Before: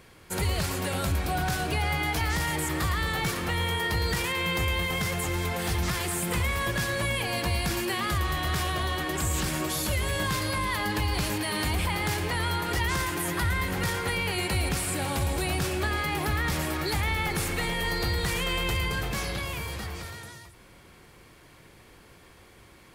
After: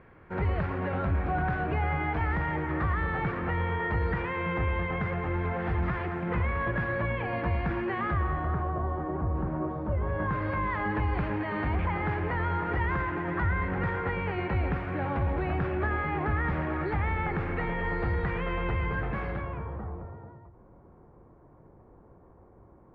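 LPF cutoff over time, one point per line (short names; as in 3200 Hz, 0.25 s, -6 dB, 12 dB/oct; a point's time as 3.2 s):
LPF 24 dB/oct
8.1 s 1900 Hz
8.75 s 1100 Hz
9.87 s 1100 Hz
10.5 s 1900 Hz
19.28 s 1900 Hz
19.96 s 1000 Hz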